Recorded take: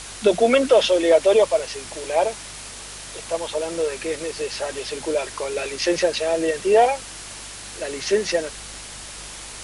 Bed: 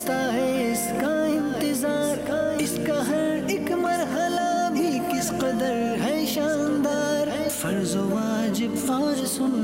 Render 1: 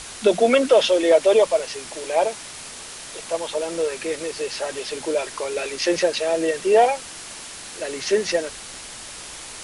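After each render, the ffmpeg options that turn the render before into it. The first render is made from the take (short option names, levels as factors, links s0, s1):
-af "bandreject=f=50:t=h:w=4,bandreject=f=100:t=h:w=4,bandreject=f=150:t=h:w=4,bandreject=f=200:t=h:w=4"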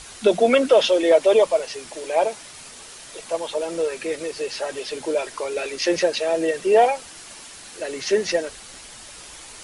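-af "afftdn=nr=6:nf=-38"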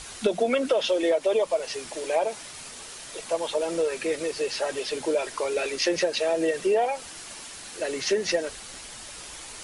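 -af "acompressor=threshold=0.1:ratio=6"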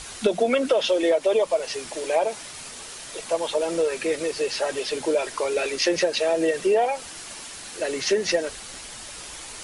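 -af "volume=1.33"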